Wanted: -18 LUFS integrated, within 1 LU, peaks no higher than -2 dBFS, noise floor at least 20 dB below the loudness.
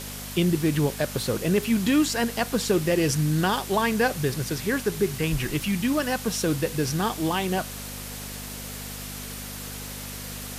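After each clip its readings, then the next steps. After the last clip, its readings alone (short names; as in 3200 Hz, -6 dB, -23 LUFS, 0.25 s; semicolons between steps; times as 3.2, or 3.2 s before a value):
hum 50 Hz; harmonics up to 250 Hz; hum level -38 dBFS; noise floor -36 dBFS; noise floor target -46 dBFS; loudness -26.0 LUFS; peak -10.5 dBFS; loudness target -18.0 LUFS
-> de-hum 50 Hz, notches 5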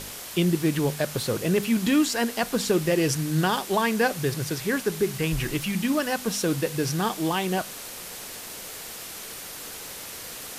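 hum none; noise floor -39 dBFS; noise floor target -46 dBFS
-> noise print and reduce 7 dB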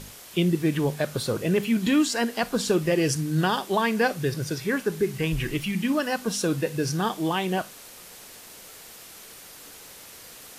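noise floor -46 dBFS; loudness -25.5 LUFS; peak -11.0 dBFS; loudness target -18.0 LUFS
-> gain +7.5 dB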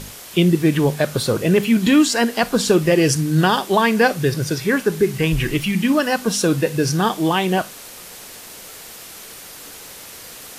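loudness -18.0 LUFS; peak -3.5 dBFS; noise floor -38 dBFS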